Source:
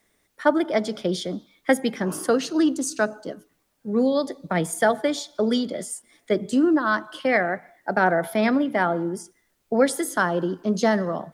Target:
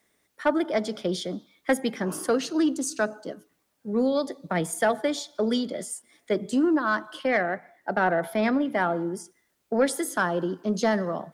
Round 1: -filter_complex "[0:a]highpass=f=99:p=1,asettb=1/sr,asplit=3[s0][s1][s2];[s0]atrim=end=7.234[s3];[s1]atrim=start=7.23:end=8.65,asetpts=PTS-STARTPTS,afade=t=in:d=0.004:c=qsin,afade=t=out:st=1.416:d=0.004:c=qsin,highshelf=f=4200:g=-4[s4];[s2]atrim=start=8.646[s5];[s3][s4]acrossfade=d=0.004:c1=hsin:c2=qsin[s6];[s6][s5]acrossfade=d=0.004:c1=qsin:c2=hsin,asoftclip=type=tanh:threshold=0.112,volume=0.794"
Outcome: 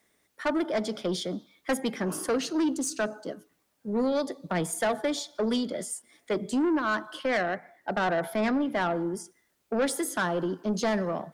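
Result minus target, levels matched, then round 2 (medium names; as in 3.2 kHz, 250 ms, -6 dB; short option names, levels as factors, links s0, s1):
saturation: distortion +11 dB
-filter_complex "[0:a]highpass=f=99:p=1,asettb=1/sr,asplit=3[s0][s1][s2];[s0]atrim=end=7.234[s3];[s1]atrim=start=7.23:end=8.65,asetpts=PTS-STARTPTS,afade=t=in:d=0.004:c=qsin,afade=t=out:st=1.416:d=0.004:c=qsin,highshelf=f=4200:g=-4[s4];[s2]atrim=start=8.646[s5];[s3][s4]acrossfade=d=0.004:c1=hsin:c2=qsin[s6];[s6][s5]acrossfade=d=0.004:c1=qsin:c2=hsin,asoftclip=type=tanh:threshold=0.335,volume=0.794"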